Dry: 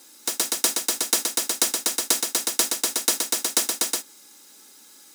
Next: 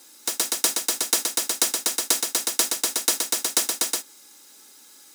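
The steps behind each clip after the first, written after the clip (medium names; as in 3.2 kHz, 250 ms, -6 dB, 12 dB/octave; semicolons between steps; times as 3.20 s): high-pass 220 Hz 6 dB/octave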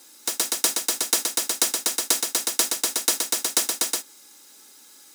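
no audible change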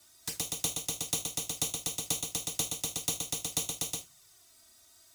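frequency shift -180 Hz; touch-sensitive flanger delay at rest 3.7 ms, full sweep at -22.5 dBFS; gated-style reverb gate 110 ms falling, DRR 10 dB; trim -7.5 dB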